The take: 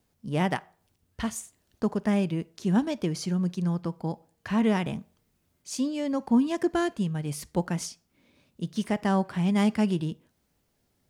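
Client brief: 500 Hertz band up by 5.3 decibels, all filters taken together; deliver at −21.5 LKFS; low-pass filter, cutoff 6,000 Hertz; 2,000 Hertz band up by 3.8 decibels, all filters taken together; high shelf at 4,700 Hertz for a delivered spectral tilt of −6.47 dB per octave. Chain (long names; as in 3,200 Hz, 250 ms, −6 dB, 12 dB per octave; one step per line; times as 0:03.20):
low-pass filter 6,000 Hz
parametric band 500 Hz +7 dB
parametric band 2,000 Hz +5 dB
high-shelf EQ 4,700 Hz −6 dB
level +4.5 dB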